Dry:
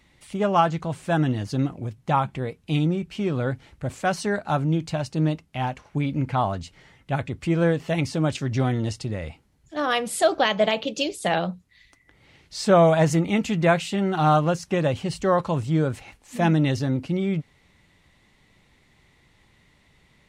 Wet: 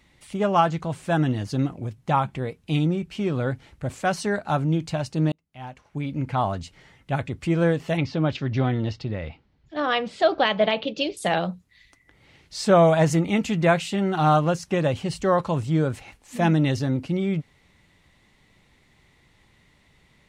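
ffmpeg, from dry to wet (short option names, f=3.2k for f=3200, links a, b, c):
-filter_complex "[0:a]asettb=1/sr,asplit=3[a][b][c];[a]atrim=end=7.974[d];[b]atrim=start=7.97:end=11.17,asetpts=PTS-STARTPTS,afade=t=in:d=0.004:c=qsin,afade=t=out:st=3.196:d=0.004:c=qsin,lowpass=f=4.6k:w=0.5412,lowpass=f=4.6k:w=1.3066[e];[c]atrim=start=11.166[f];[d][e]acrossfade=d=0.004:c1=hsin:c2=qsin[g];[g][f]acrossfade=d=0.004:c1=qsin:c2=hsin,asplit=2[h][i];[h]atrim=end=5.32,asetpts=PTS-STARTPTS,afade=t=out:st=5.316:d=0.004:c=hsin[j];[i]atrim=start=5.32,asetpts=PTS-STARTPTS,afade=t=in:d=1.16[k];[j][k]concat=n=2:v=0:a=1"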